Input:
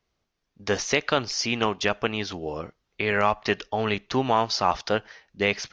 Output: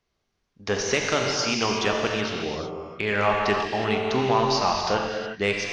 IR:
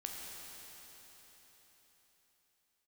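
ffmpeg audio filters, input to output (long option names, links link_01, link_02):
-filter_complex "[0:a]asoftclip=type=tanh:threshold=-11dB[link_01];[1:a]atrim=start_sample=2205,afade=type=out:start_time=0.24:duration=0.01,atrim=end_sample=11025,asetrate=22491,aresample=44100[link_02];[link_01][link_02]afir=irnorm=-1:irlink=0"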